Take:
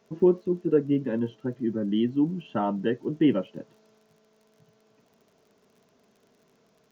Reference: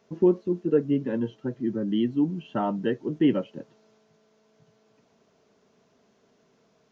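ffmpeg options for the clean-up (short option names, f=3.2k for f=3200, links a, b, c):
-af "adeclick=t=4"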